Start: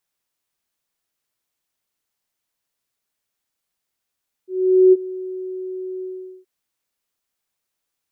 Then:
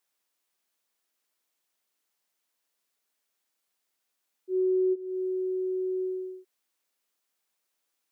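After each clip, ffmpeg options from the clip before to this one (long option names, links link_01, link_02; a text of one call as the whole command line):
ffmpeg -i in.wav -af "highpass=240,acompressor=threshold=-24dB:ratio=8" out.wav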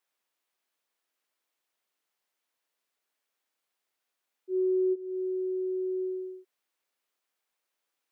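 ffmpeg -i in.wav -af "bass=frequency=250:gain=-7,treble=frequency=4000:gain=-6" out.wav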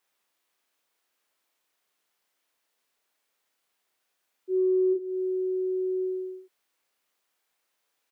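ffmpeg -i in.wav -filter_complex "[0:a]asplit=2[link_01][link_02];[link_02]adelay=34,volume=-4.5dB[link_03];[link_01][link_03]amix=inputs=2:normalize=0,volume=5dB" out.wav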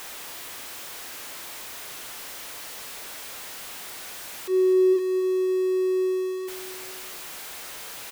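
ffmpeg -i in.wav -af "aeval=exprs='val(0)+0.5*0.0168*sgn(val(0))':channel_layout=same,aecho=1:1:255|510|765|1020:0.168|0.0823|0.0403|0.0198,volume=3dB" out.wav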